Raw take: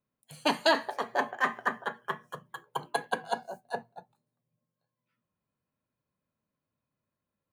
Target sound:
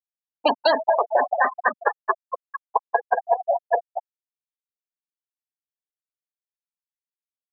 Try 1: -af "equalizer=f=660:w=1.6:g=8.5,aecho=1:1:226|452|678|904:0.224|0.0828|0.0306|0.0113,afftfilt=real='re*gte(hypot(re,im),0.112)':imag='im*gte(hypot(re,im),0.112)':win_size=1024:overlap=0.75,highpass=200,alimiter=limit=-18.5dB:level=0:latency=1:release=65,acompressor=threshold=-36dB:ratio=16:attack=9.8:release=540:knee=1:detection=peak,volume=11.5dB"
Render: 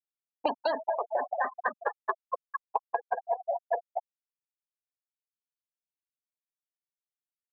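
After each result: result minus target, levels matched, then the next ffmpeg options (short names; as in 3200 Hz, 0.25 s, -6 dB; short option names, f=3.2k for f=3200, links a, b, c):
compressor: peak gain reduction +11 dB; 4000 Hz band -5.0 dB
-af "equalizer=f=660:w=1.6:g=8.5,aecho=1:1:226|452|678|904:0.224|0.0828|0.0306|0.0113,afftfilt=real='re*gte(hypot(re,im),0.112)':imag='im*gte(hypot(re,im),0.112)':win_size=1024:overlap=0.75,highpass=200,alimiter=limit=-18.5dB:level=0:latency=1:release=65,acompressor=threshold=-24.5dB:ratio=16:attack=9.8:release=540:knee=1:detection=peak,volume=11.5dB"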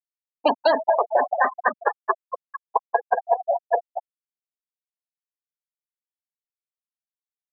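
4000 Hz band -4.5 dB
-af "equalizer=f=660:w=1.6:g=8.5,aecho=1:1:226|452|678|904:0.224|0.0828|0.0306|0.0113,afftfilt=real='re*gte(hypot(re,im),0.112)':imag='im*gte(hypot(re,im),0.112)':win_size=1024:overlap=0.75,highpass=200,highshelf=f=2.1k:g=8.5,alimiter=limit=-18.5dB:level=0:latency=1:release=65,acompressor=threshold=-24.5dB:ratio=16:attack=9.8:release=540:knee=1:detection=peak,volume=11.5dB"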